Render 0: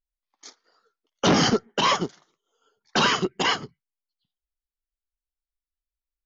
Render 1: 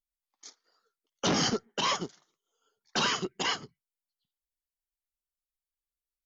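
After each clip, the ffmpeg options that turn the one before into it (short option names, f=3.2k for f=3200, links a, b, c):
-af "aemphasis=mode=production:type=cd,volume=-8.5dB"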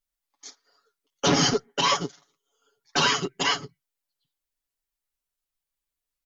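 -af "aecho=1:1:7.1:0.96,volume=3dB"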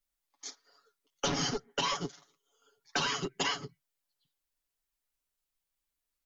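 -filter_complex "[0:a]acrossover=split=220|800[a][b][c];[b]aeval=exprs='clip(val(0),-1,0.0299)':c=same[d];[a][d][c]amix=inputs=3:normalize=0,acompressor=threshold=-29dB:ratio=6"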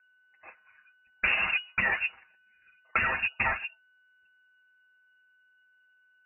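-af "aeval=exprs='val(0)+0.000355*sin(2*PI*1400*n/s)':c=same,lowpass=f=2.5k:t=q:w=0.5098,lowpass=f=2.5k:t=q:w=0.6013,lowpass=f=2.5k:t=q:w=0.9,lowpass=f=2.5k:t=q:w=2.563,afreqshift=-2900,volume=6.5dB"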